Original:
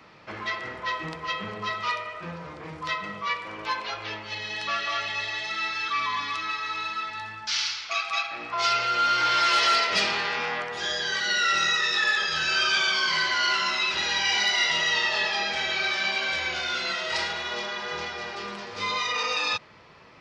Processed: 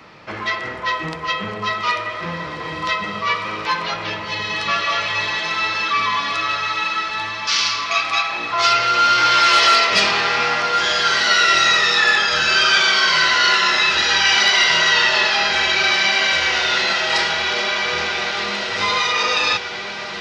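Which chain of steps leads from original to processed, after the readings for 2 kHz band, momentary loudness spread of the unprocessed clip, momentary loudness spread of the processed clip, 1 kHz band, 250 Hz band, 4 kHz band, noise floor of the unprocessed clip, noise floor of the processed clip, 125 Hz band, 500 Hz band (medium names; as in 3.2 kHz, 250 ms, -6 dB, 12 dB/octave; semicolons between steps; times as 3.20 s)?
+9.0 dB, 11 LU, 11 LU, +9.0 dB, +9.0 dB, +9.0 dB, -42 dBFS, -29 dBFS, +9.0 dB, +9.0 dB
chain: echo that smears into a reverb 1717 ms, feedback 46%, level -6 dB; trim +8 dB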